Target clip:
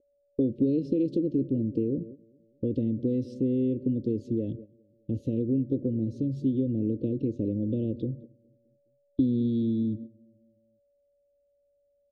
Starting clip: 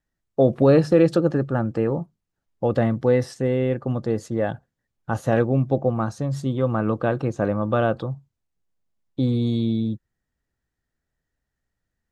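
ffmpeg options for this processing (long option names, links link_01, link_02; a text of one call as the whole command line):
ffmpeg -i in.wav -filter_complex "[0:a]acrossover=split=360|850[link_01][link_02][link_03];[link_01]acompressor=threshold=-24dB:ratio=4[link_04];[link_02]acompressor=threshold=-26dB:ratio=4[link_05];[link_03]acompressor=threshold=-31dB:ratio=4[link_06];[link_04][link_05][link_06]amix=inputs=3:normalize=0,bass=frequency=250:gain=5,treble=frequency=4000:gain=8,asplit=2[link_07][link_08];[link_08]adelay=208,lowpass=frequency=1000:poles=1,volume=-19dB,asplit=2[link_09][link_10];[link_10]adelay=208,lowpass=frequency=1000:poles=1,volume=0.53,asplit=2[link_11][link_12];[link_12]adelay=208,lowpass=frequency=1000:poles=1,volume=0.53,asplit=2[link_13][link_14];[link_14]adelay=208,lowpass=frequency=1000:poles=1,volume=0.53[link_15];[link_09][link_11][link_13][link_15]amix=inputs=4:normalize=0[link_16];[link_07][link_16]amix=inputs=2:normalize=0,aeval=exprs='val(0)+0.00794*sin(2*PI*570*n/s)':channel_layout=same,agate=range=-15dB:threshold=-35dB:ratio=16:detection=peak,asuperstop=centerf=1200:order=8:qfactor=0.51,acompressor=threshold=-32dB:ratio=2,firequalizer=gain_entry='entry(100,0);entry(160,-6);entry(260,9);entry(770,-11);entry(1100,-5);entry(3500,-11);entry(7600,-29)':delay=0.05:min_phase=1" out.wav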